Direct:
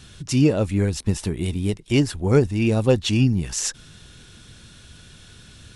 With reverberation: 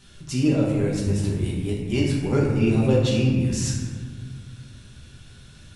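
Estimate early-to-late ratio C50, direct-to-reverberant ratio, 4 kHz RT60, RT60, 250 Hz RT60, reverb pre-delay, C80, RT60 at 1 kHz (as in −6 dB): 1.0 dB, −4.5 dB, 0.95 s, 1.6 s, 2.5 s, 5 ms, 3.0 dB, 1.6 s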